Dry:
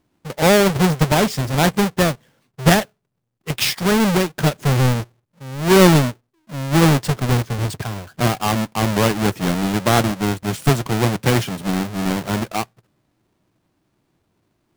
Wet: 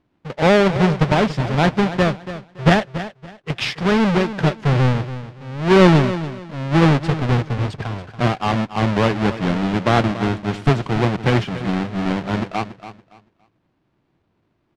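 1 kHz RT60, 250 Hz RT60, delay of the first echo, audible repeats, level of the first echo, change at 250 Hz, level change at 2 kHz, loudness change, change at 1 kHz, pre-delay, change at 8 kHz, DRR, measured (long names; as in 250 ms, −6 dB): no reverb audible, no reverb audible, 283 ms, 2, −13.0 dB, 0.0 dB, 0.0 dB, −0.5 dB, 0.0 dB, no reverb audible, −13.5 dB, no reverb audible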